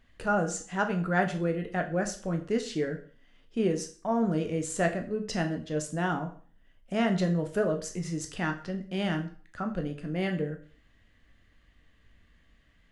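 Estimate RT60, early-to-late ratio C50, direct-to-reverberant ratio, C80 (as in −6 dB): 0.45 s, 12.0 dB, 4.5 dB, 15.5 dB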